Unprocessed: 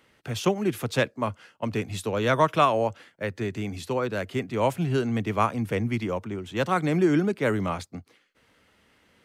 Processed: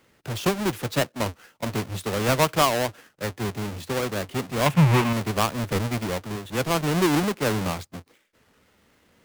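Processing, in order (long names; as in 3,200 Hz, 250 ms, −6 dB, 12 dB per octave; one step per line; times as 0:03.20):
each half-wave held at its own peak
0:04.67–0:05.13: graphic EQ with 15 bands 160 Hz +12 dB, 1,000 Hz +9 dB, 2,500 Hz +9 dB
wow of a warped record 33 1/3 rpm, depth 160 cents
level −3.5 dB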